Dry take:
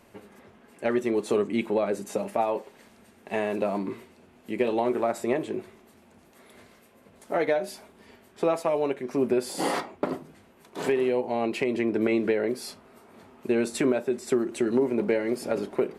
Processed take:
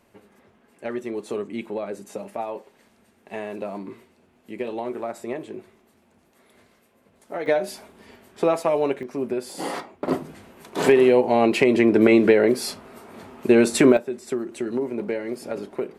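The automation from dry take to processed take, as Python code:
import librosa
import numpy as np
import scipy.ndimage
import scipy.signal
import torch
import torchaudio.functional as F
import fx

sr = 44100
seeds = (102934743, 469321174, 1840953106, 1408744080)

y = fx.gain(x, sr, db=fx.steps((0.0, -4.5), (7.46, 4.0), (9.03, -2.5), (10.08, 9.0), (13.97, -2.5)))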